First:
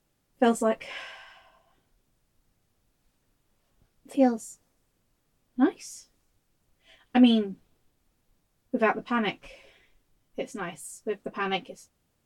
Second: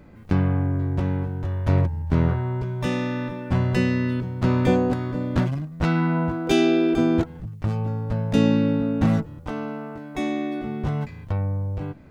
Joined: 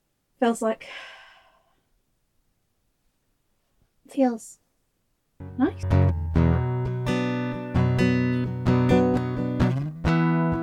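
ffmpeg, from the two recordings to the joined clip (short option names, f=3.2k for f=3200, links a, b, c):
-filter_complex "[1:a]asplit=2[a][b];[0:a]apad=whole_dur=10.62,atrim=end=10.62,atrim=end=5.832[c];[b]atrim=start=1.588:end=6.38[d];[a]atrim=start=1.16:end=1.59,asetpts=PTS-STARTPTS,volume=-12dB,afade=t=in:d=0.004:c=hsin,afade=t=out:st=0.426:d=0.004:c=hsin,adelay=5400[e];[c][d]acrossfade=d=0.004:c1=hsin:c2=hsin[f];[f][e]amix=inputs=2:normalize=0"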